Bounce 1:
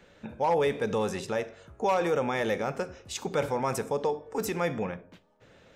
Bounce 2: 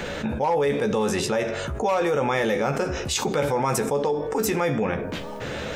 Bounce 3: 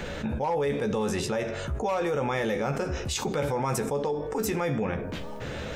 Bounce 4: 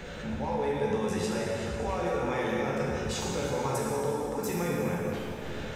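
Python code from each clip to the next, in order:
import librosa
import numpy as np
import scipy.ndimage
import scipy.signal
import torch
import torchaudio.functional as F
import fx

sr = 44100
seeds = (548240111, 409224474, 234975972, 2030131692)

y1 = fx.doubler(x, sr, ms=14.0, db=-7)
y1 = fx.env_flatten(y1, sr, amount_pct=70)
y2 = fx.low_shelf(y1, sr, hz=120.0, db=8.5)
y2 = y2 * librosa.db_to_amplitude(-5.5)
y3 = fx.rev_plate(y2, sr, seeds[0], rt60_s=3.0, hf_ratio=0.85, predelay_ms=0, drr_db=-4.0)
y3 = y3 * librosa.db_to_amplitude(-7.5)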